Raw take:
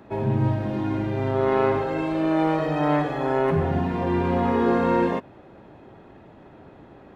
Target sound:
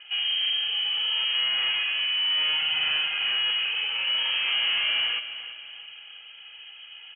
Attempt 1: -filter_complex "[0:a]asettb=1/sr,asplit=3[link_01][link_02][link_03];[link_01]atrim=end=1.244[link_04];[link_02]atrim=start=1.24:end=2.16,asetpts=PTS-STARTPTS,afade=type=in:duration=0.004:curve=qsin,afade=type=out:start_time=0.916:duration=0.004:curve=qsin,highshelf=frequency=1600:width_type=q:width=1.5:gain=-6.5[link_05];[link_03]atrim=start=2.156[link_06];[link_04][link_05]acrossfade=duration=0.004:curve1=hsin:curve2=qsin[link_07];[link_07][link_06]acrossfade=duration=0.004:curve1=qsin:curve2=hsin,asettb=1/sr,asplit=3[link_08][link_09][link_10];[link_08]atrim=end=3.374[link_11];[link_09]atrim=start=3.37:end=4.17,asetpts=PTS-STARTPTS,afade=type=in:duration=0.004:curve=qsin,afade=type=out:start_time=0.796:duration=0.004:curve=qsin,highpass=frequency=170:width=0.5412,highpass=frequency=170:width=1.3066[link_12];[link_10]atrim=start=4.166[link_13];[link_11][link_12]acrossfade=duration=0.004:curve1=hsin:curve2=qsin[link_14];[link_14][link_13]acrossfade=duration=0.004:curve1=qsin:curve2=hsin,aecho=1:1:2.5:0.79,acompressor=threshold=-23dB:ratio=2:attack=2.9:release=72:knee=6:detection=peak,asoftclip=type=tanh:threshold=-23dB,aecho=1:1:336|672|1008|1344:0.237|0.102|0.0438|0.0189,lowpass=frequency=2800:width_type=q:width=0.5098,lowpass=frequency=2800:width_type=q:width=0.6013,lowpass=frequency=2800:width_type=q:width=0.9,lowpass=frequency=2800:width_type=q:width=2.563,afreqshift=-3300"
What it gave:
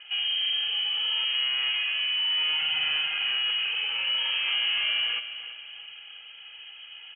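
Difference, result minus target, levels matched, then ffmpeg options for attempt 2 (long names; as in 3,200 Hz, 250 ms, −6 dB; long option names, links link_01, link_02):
downward compressor: peak gain reduction +6.5 dB
-filter_complex "[0:a]asettb=1/sr,asplit=3[link_01][link_02][link_03];[link_01]atrim=end=1.244[link_04];[link_02]atrim=start=1.24:end=2.16,asetpts=PTS-STARTPTS,afade=type=in:duration=0.004:curve=qsin,afade=type=out:start_time=0.916:duration=0.004:curve=qsin,highshelf=frequency=1600:width_type=q:width=1.5:gain=-6.5[link_05];[link_03]atrim=start=2.156[link_06];[link_04][link_05]acrossfade=duration=0.004:curve1=hsin:curve2=qsin[link_07];[link_07][link_06]acrossfade=duration=0.004:curve1=qsin:curve2=hsin,asettb=1/sr,asplit=3[link_08][link_09][link_10];[link_08]atrim=end=3.374[link_11];[link_09]atrim=start=3.37:end=4.17,asetpts=PTS-STARTPTS,afade=type=in:duration=0.004:curve=qsin,afade=type=out:start_time=0.796:duration=0.004:curve=qsin,highpass=frequency=170:width=0.5412,highpass=frequency=170:width=1.3066[link_12];[link_10]atrim=start=4.166[link_13];[link_11][link_12]acrossfade=duration=0.004:curve1=hsin:curve2=qsin[link_14];[link_14][link_13]acrossfade=duration=0.004:curve1=qsin:curve2=hsin,aecho=1:1:2.5:0.79,asoftclip=type=tanh:threshold=-23dB,aecho=1:1:336|672|1008|1344:0.237|0.102|0.0438|0.0189,lowpass=frequency=2800:width_type=q:width=0.5098,lowpass=frequency=2800:width_type=q:width=0.6013,lowpass=frequency=2800:width_type=q:width=0.9,lowpass=frequency=2800:width_type=q:width=2.563,afreqshift=-3300"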